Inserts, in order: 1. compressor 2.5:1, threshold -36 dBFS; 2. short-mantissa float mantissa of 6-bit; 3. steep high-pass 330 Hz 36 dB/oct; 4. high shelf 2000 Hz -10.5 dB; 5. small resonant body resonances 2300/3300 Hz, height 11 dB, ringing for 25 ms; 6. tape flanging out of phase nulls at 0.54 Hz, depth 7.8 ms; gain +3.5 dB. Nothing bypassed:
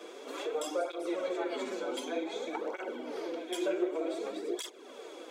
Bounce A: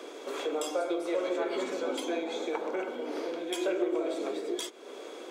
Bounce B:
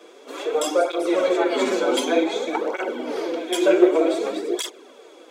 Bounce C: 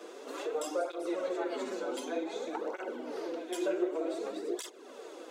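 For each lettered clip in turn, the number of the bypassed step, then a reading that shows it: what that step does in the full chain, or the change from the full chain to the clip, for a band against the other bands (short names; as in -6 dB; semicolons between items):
6, loudness change +3.0 LU; 1, mean gain reduction 11.0 dB; 5, 4 kHz band -4.0 dB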